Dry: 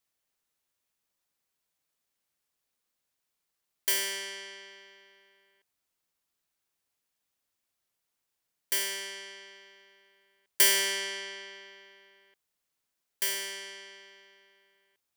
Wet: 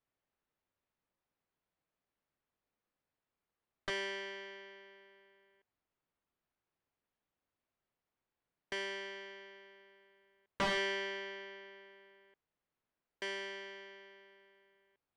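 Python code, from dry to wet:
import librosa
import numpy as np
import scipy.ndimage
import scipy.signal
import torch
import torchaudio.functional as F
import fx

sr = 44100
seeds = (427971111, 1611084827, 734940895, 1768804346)

y = (np.mod(10.0 ** (17.0 / 20.0) * x + 1.0, 2.0) - 1.0) / 10.0 ** (17.0 / 20.0)
y = fx.spacing_loss(y, sr, db_at_10k=38)
y = y * librosa.db_to_amplitude(3.0)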